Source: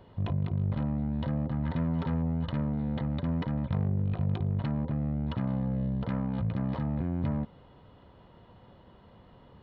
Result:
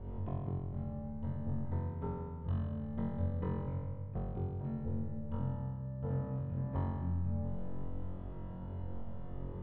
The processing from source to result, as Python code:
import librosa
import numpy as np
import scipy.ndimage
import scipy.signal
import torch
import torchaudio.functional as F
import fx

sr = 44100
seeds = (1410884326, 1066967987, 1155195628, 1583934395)

p1 = fx.tilt_eq(x, sr, slope=-3.0)
p2 = fx.over_compress(p1, sr, threshold_db=-30.0, ratio=-1.0)
p3 = fx.air_absorb(p2, sr, metres=440.0)
p4 = fx.comb_fb(p3, sr, f0_hz=440.0, decay_s=0.77, harmonics='all', damping=0.0, mix_pct=80)
p5 = p4 + fx.room_flutter(p4, sr, wall_m=3.8, rt60_s=1.5, dry=0)
y = F.gain(torch.from_numpy(p5), 2.5).numpy()